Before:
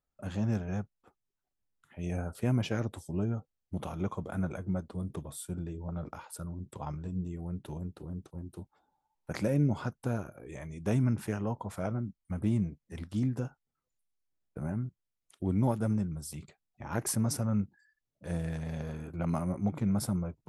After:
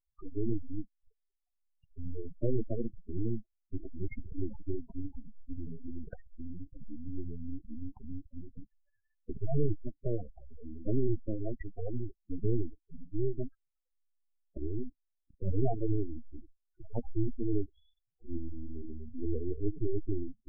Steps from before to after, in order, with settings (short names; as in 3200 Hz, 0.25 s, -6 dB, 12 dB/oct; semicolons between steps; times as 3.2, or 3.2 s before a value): full-wave rectifier; spectral gate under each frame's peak -15 dB strong; gain +4 dB